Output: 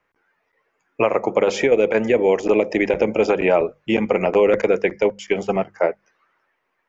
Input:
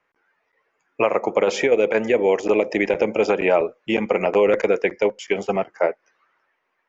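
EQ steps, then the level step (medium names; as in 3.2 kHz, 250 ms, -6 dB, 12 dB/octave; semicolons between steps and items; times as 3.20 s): bass shelf 190 Hz +9 dB; hum notches 50/100/150/200 Hz; 0.0 dB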